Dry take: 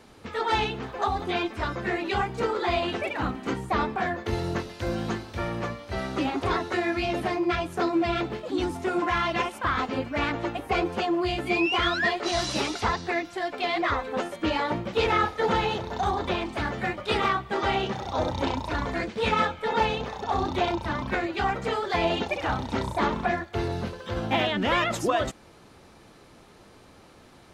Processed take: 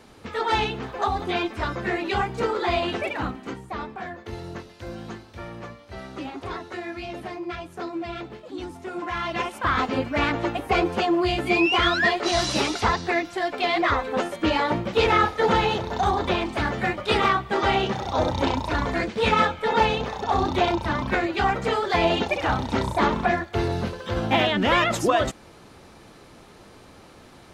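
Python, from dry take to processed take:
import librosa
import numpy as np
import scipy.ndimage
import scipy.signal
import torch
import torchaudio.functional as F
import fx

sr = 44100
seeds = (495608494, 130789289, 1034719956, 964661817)

y = fx.gain(x, sr, db=fx.line((3.13, 2.0), (3.63, -7.0), (8.88, -7.0), (9.75, 4.0)))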